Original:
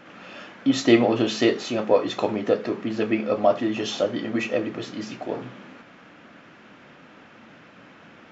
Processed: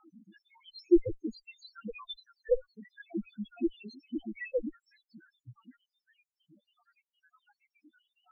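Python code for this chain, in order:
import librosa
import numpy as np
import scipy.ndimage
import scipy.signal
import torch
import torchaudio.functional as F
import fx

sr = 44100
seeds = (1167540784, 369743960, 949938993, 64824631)

p1 = fx.spec_dropout(x, sr, seeds[0], share_pct=84)
p2 = fx.cheby_harmonics(p1, sr, harmonics=(2, 3, 4, 6), levels_db=(-6, -35, -42, -16), full_scale_db=-5.0)
p3 = 10.0 ** (-15.0 / 20.0) * np.tanh(p2 / 10.0 ** (-15.0 / 20.0))
p4 = p2 + (p3 * 10.0 ** (-9.5 / 20.0))
p5 = fx.spec_topn(p4, sr, count=2)
p6 = scipy.signal.sosfilt(scipy.signal.butter(2, 4200.0, 'lowpass', fs=sr, output='sos'), p5)
y = p6 * 10.0 ** (-2.0 / 20.0)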